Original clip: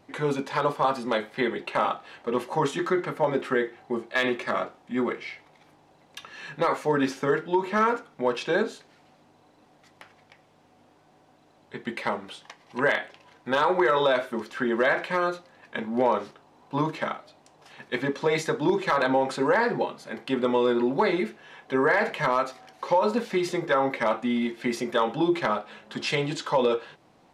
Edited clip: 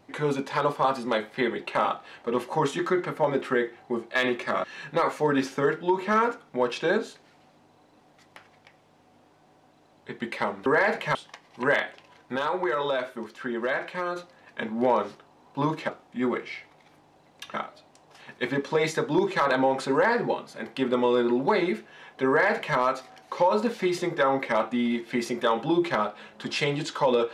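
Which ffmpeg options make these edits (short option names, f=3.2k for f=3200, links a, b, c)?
-filter_complex "[0:a]asplit=8[a][b][c][d][e][f][g][h];[a]atrim=end=4.642[i];[b]atrim=start=6.288:end=12.312[j];[c]atrim=start=21.788:end=22.282[k];[d]atrim=start=12.308:end=13.522[l];[e]atrim=start=13.518:end=15.322,asetpts=PTS-STARTPTS,volume=-5dB[m];[f]atrim=start=15.318:end=17.052[n];[g]atrim=start=4.638:end=6.292[o];[h]atrim=start=17.048[p];[i][j]acrossfade=d=0.004:c1=hsin:c2=hsin[q];[q][k]acrossfade=d=0.004:c1=hsin:c2=hsin[r];[r][l]acrossfade=d=0.004:c1=hsin:c2=hsin[s];[s][m]acrossfade=d=0.004:c1=hsin:c2=hsin[t];[t][n]acrossfade=d=0.004:c1=hsin:c2=hsin[u];[u][o]acrossfade=d=0.004:c1=hsin:c2=hsin[v];[v][p]acrossfade=d=0.004:c1=hsin:c2=hsin"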